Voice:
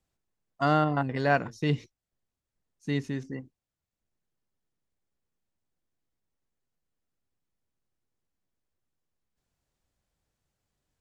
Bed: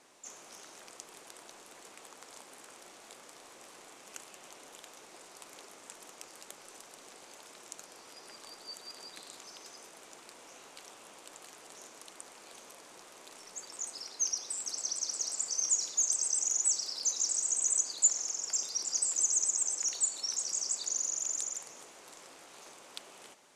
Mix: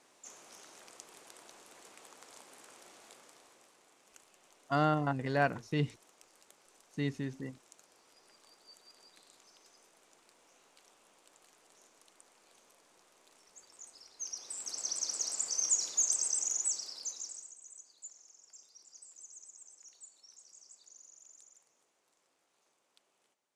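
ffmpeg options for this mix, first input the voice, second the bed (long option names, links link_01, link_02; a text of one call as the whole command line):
ffmpeg -i stem1.wav -i stem2.wav -filter_complex "[0:a]adelay=4100,volume=-5dB[link_01];[1:a]volume=8.5dB,afade=type=out:start_time=2.99:duration=0.76:silence=0.354813,afade=type=in:start_time=14.14:duration=0.83:silence=0.251189,afade=type=out:start_time=16.14:duration=1.41:silence=0.0707946[link_02];[link_01][link_02]amix=inputs=2:normalize=0" out.wav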